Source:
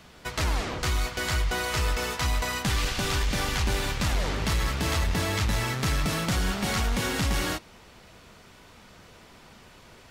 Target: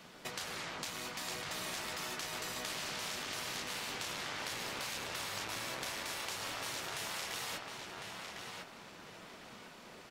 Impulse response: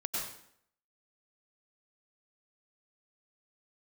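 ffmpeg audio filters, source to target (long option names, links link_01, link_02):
-filter_complex "[0:a]highpass=frequency=160:width=0.5412,highpass=frequency=160:width=1.3066,afftfilt=real='re*lt(hypot(re,im),0.0708)':imag='im*lt(hypot(re,im),0.0708)':win_size=1024:overlap=0.75,tremolo=f=300:d=0.621,acompressor=threshold=-38dB:ratio=6,asplit=2[link_01][link_02];[link_02]adelay=1053,lowpass=frequency=3700:poles=1,volume=-3dB,asplit=2[link_03][link_04];[link_04]adelay=1053,lowpass=frequency=3700:poles=1,volume=0.32,asplit=2[link_05][link_06];[link_06]adelay=1053,lowpass=frequency=3700:poles=1,volume=0.32,asplit=2[link_07][link_08];[link_08]adelay=1053,lowpass=frequency=3700:poles=1,volume=0.32[link_09];[link_03][link_05][link_07][link_09]amix=inputs=4:normalize=0[link_10];[link_01][link_10]amix=inputs=2:normalize=0"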